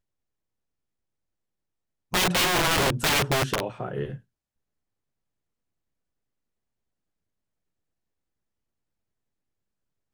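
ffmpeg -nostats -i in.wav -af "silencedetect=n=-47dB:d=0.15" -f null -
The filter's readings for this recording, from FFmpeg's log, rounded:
silence_start: 0.00
silence_end: 2.12 | silence_duration: 2.12
silence_start: 4.20
silence_end: 10.13 | silence_duration: 5.93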